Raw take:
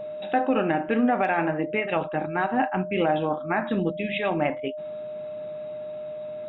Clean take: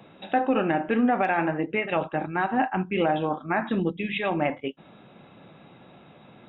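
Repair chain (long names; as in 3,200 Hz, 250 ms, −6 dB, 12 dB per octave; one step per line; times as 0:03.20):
notch filter 610 Hz, Q 30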